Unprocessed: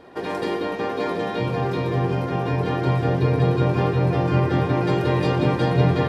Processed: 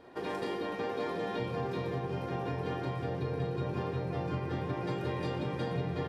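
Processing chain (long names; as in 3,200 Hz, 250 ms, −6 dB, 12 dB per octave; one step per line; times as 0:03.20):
downward compressor, threshold −22 dBFS, peak gain reduction 9.5 dB
double-tracking delay 36 ms −7 dB
level −8.5 dB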